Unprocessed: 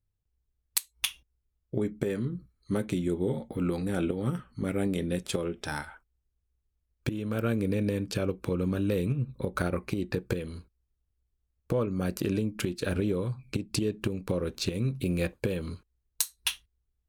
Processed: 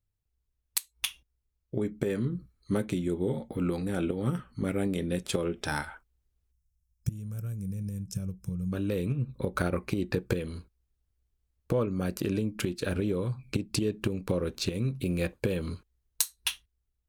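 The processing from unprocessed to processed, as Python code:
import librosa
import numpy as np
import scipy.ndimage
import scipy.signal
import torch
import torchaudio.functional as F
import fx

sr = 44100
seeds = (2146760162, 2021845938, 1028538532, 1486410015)

y = fx.rider(x, sr, range_db=3, speed_s=0.5)
y = fx.spec_box(y, sr, start_s=6.52, length_s=2.2, low_hz=210.0, high_hz=5100.0, gain_db=-20)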